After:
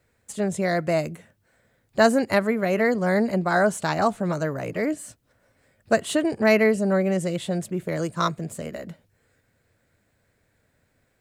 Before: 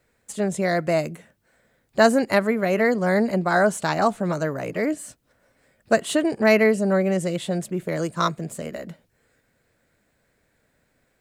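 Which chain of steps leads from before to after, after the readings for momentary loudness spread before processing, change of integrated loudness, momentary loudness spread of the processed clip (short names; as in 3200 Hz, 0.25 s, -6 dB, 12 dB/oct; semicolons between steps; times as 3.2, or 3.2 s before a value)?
14 LU, -1.5 dB, 14 LU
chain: bell 96 Hz +9 dB 0.62 oct; gain -1.5 dB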